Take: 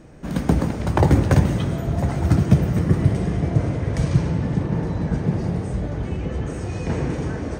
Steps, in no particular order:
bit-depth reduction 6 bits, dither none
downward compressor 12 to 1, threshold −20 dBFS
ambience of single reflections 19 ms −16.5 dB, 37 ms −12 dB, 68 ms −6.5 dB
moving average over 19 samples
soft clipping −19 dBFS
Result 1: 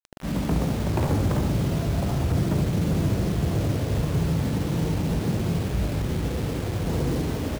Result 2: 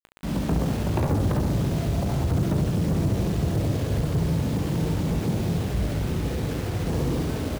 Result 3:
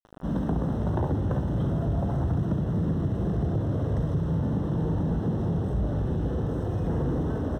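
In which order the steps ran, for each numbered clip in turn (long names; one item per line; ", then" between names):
moving average, then soft clipping, then downward compressor, then ambience of single reflections, then bit-depth reduction
moving average, then bit-depth reduction, then soft clipping, then downward compressor, then ambience of single reflections
downward compressor, then ambience of single reflections, then bit-depth reduction, then soft clipping, then moving average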